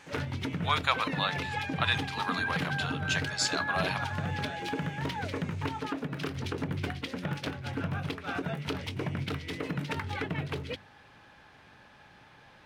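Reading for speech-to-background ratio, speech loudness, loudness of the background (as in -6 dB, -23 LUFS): 2.0 dB, -32.0 LUFS, -34.0 LUFS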